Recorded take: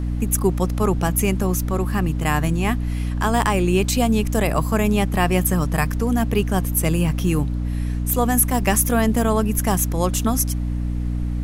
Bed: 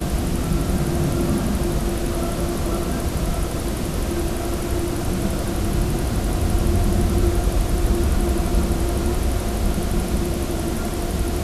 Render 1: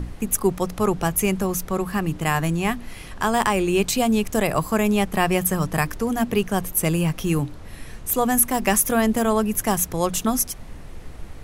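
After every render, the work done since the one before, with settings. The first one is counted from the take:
mains-hum notches 60/120/180/240/300 Hz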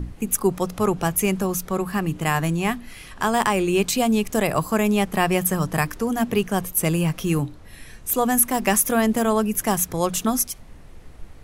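noise reduction from a noise print 6 dB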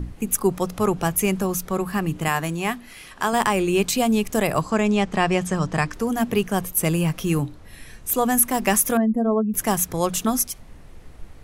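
0:02.28–0:03.33: low-shelf EQ 160 Hz −10.5 dB
0:04.61–0:05.94: low-pass filter 7,600 Hz 24 dB per octave
0:08.97–0:09.54: expanding power law on the bin magnitudes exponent 2.2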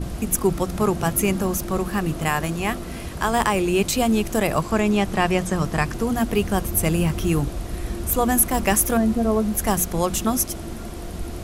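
mix in bed −9.5 dB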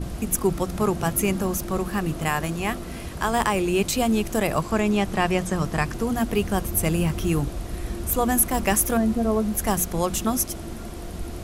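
level −2 dB

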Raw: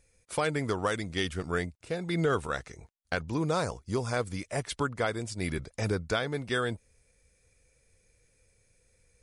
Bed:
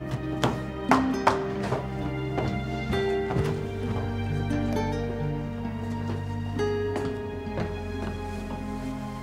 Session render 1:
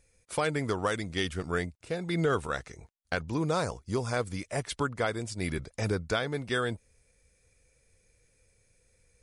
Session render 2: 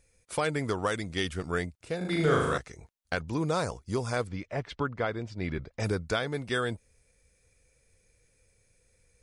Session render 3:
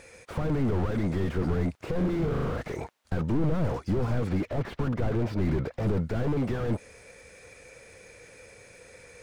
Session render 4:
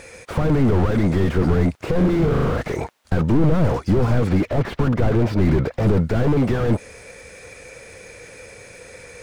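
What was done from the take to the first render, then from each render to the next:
no processing that can be heard
0:01.97–0:02.58: flutter between parallel walls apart 6.6 metres, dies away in 1 s; 0:04.27–0:05.80: high-frequency loss of the air 210 metres
mid-hump overdrive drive 34 dB, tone 1,300 Hz, clips at −14 dBFS; slew-rate limiting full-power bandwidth 17 Hz
level +9.5 dB

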